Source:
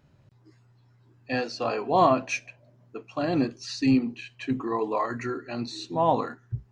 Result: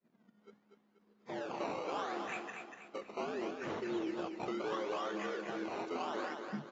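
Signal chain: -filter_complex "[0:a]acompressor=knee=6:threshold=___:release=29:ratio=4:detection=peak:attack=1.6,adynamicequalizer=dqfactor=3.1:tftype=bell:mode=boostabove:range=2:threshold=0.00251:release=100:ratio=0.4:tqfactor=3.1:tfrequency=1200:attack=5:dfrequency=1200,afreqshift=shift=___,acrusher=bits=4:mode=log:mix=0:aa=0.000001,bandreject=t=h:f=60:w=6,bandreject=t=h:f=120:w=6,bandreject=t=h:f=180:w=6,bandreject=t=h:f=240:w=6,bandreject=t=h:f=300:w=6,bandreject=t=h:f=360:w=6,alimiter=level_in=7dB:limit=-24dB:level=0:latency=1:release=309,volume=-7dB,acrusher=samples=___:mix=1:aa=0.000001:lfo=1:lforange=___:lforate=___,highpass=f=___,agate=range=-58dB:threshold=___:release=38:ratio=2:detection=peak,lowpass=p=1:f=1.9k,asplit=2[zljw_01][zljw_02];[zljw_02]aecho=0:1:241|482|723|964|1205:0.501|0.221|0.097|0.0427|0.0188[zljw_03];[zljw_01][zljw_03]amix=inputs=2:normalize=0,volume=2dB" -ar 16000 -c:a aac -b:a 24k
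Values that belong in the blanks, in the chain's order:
-37dB, 89, 18, 18, 0.73, 180, -50dB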